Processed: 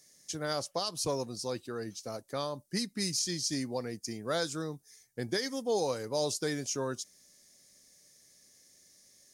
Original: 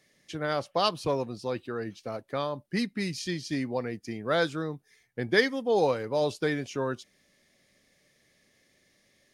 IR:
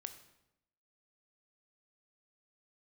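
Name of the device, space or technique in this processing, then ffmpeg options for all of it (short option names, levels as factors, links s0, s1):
over-bright horn tweeter: -af "highshelf=f=4200:t=q:w=1.5:g=14,alimiter=limit=0.15:level=0:latency=1:release=129,volume=0.631"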